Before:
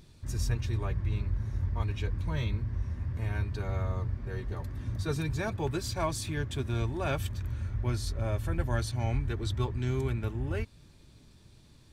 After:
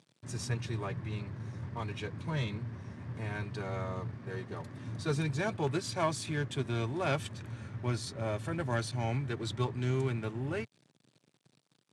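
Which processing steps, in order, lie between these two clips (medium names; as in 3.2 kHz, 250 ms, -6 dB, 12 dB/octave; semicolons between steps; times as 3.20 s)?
self-modulated delay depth 0.086 ms; crossover distortion -52.5 dBFS; elliptic band-pass 130–9700 Hz, stop band 40 dB; trim +1.5 dB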